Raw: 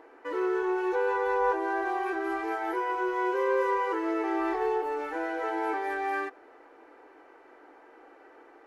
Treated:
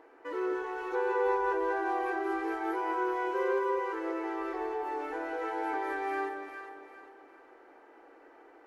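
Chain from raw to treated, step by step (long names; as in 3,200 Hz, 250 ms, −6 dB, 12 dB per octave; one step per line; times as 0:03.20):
0:03.58–0:05.33: downward compressor, threshold −28 dBFS, peak gain reduction 5.5 dB
delay that swaps between a low-pass and a high-pass 201 ms, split 980 Hz, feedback 60%, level −3 dB
level −4 dB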